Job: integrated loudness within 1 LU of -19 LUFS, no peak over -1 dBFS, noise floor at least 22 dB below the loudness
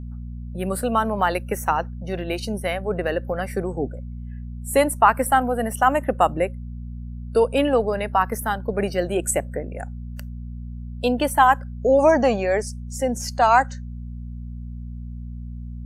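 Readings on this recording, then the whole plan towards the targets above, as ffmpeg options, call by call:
hum 60 Hz; harmonics up to 240 Hz; hum level -31 dBFS; loudness -21.5 LUFS; peak -2.5 dBFS; loudness target -19.0 LUFS
-> -af "bandreject=f=60:t=h:w=4,bandreject=f=120:t=h:w=4,bandreject=f=180:t=h:w=4,bandreject=f=240:t=h:w=4"
-af "volume=2.5dB,alimiter=limit=-1dB:level=0:latency=1"

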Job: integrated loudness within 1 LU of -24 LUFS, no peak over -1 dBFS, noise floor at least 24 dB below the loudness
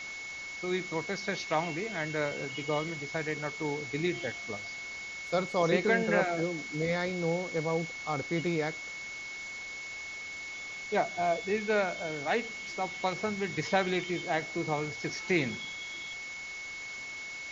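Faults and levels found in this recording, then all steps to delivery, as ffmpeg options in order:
steady tone 2200 Hz; tone level -39 dBFS; noise floor -41 dBFS; noise floor target -57 dBFS; loudness -32.5 LUFS; peak -14.0 dBFS; loudness target -24.0 LUFS
-> -af "bandreject=f=2.2k:w=30"
-af "afftdn=nr=16:nf=-41"
-af "volume=8.5dB"

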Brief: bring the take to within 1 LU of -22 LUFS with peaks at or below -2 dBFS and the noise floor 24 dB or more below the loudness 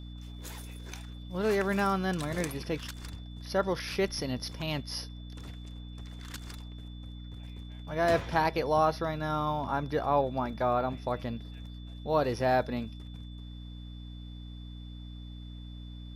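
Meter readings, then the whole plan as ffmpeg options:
hum 60 Hz; harmonics up to 300 Hz; hum level -40 dBFS; steady tone 3500 Hz; tone level -55 dBFS; loudness -31.0 LUFS; peak -12.5 dBFS; loudness target -22.0 LUFS
-> -af "bandreject=f=60:t=h:w=6,bandreject=f=120:t=h:w=6,bandreject=f=180:t=h:w=6,bandreject=f=240:t=h:w=6,bandreject=f=300:t=h:w=6"
-af "bandreject=f=3.5k:w=30"
-af "volume=9dB"

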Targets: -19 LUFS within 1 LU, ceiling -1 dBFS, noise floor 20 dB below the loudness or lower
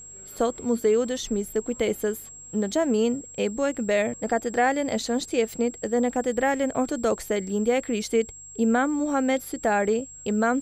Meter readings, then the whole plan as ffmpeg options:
hum 50 Hz; harmonics up to 150 Hz; hum level -55 dBFS; steady tone 7600 Hz; tone level -41 dBFS; loudness -25.5 LUFS; peak -10.5 dBFS; loudness target -19.0 LUFS
-> -af "bandreject=f=50:t=h:w=4,bandreject=f=100:t=h:w=4,bandreject=f=150:t=h:w=4"
-af "bandreject=f=7.6k:w=30"
-af "volume=6.5dB"

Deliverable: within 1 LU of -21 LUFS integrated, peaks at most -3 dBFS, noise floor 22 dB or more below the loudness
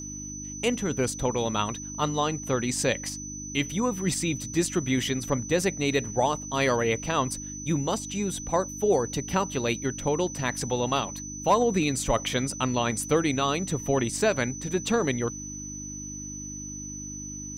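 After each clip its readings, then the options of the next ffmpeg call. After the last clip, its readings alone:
hum 50 Hz; harmonics up to 300 Hz; hum level -38 dBFS; steady tone 6000 Hz; tone level -37 dBFS; loudness -27.5 LUFS; peak -11.5 dBFS; loudness target -21.0 LUFS
-> -af "bandreject=f=50:t=h:w=4,bandreject=f=100:t=h:w=4,bandreject=f=150:t=h:w=4,bandreject=f=200:t=h:w=4,bandreject=f=250:t=h:w=4,bandreject=f=300:t=h:w=4"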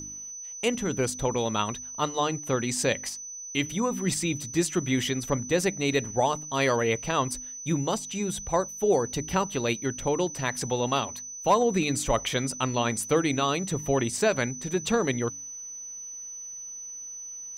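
hum none; steady tone 6000 Hz; tone level -37 dBFS
-> -af "bandreject=f=6k:w=30"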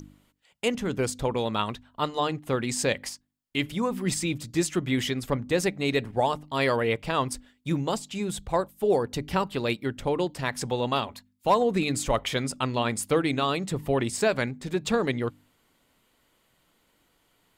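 steady tone none; loudness -27.5 LUFS; peak -12.0 dBFS; loudness target -21.0 LUFS
-> -af "volume=6.5dB"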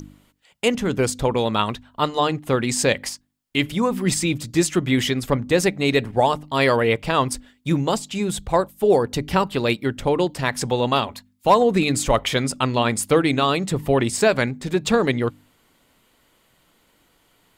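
loudness -21.0 LUFS; peak -5.5 dBFS; noise floor -62 dBFS

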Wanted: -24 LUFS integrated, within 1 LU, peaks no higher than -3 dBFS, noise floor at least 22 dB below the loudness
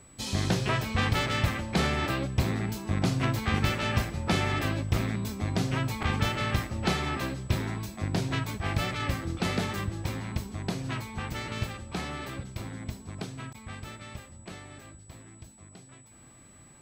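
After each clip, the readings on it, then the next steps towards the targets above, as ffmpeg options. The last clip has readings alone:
steady tone 7900 Hz; tone level -55 dBFS; loudness -30.0 LUFS; peak -13.5 dBFS; loudness target -24.0 LUFS
-> -af "bandreject=f=7.9k:w=30"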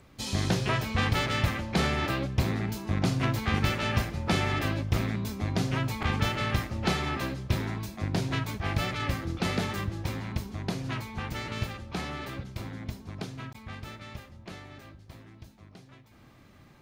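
steady tone none; loudness -30.5 LUFS; peak -13.5 dBFS; loudness target -24.0 LUFS
-> -af "volume=6.5dB"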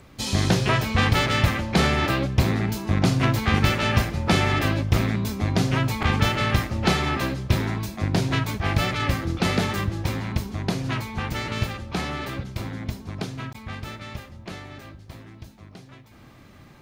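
loudness -24.0 LUFS; peak -7.0 dBFS; noise floor -49 dBFS

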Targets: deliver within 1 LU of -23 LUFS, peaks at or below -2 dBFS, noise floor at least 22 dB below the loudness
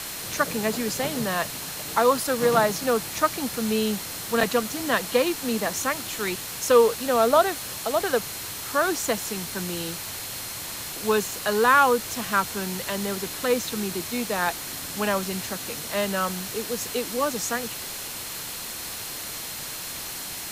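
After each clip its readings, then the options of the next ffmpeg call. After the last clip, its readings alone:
steady tone 4200 Hz; tone level -45 dBFS; noise floor -35 dBFS; noise floor target -47 dBFS; loudness -25.0 LUFS; peak -6.0 dBFS; loudness target -23.0 LUFS
-> -af "bandreject=f=4.2k:w=30"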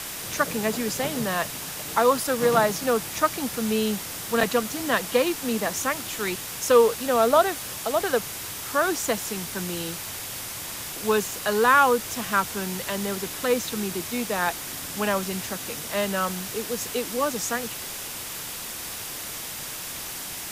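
steady tone none; noise floor -35 dBFS; noise floor target -48 dBFS
-> -af "afftdn=nr=13:nf=-35"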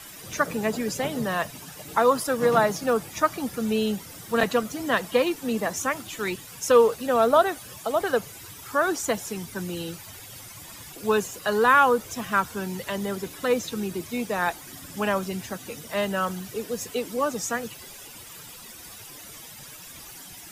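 noise floor -44 dBFS; noise floor target -48 dBFS
-> -af "afftdn=nr=6:nf=-44"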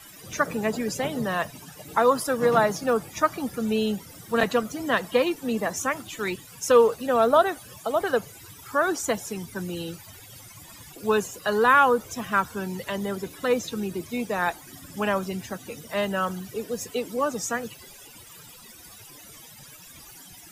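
noise floor -47 dBFS; noise floor target -48 dBFS
-> -af "afftdn=nr=6:nf=-47"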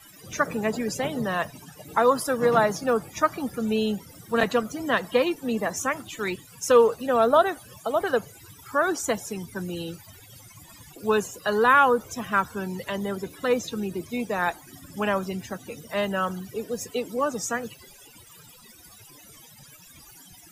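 noise floor -50 dBFS; loudness -25.5 LUFS; peak -6.5 dBFS; loudness target -23.0 LUFS
-> -af "volume=2.5dB"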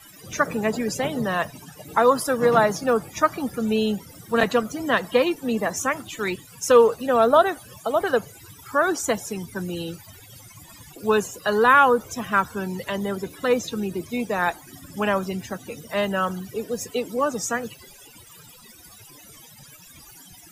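loudness -23.0 LUFS; peak -4.0 dBFS; noise floor -48 dBFS

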